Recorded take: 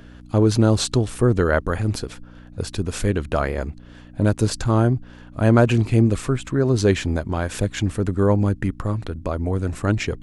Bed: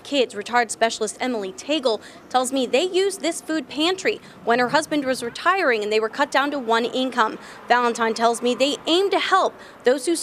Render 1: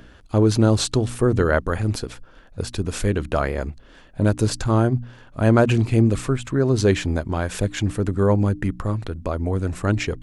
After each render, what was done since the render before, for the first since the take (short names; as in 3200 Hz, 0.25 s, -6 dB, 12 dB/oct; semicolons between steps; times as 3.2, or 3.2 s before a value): de-hum 60 Hz, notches 5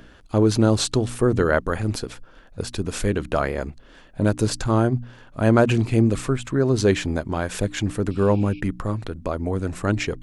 bell 76 Hz -5 dB 1.1 oct; 8.13–8.57 spectral repair 2200–5700 Hz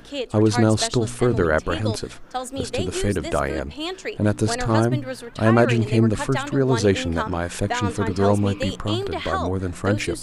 add bed -8.5 dB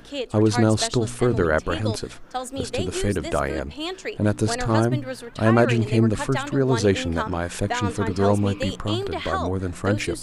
gain -1 dB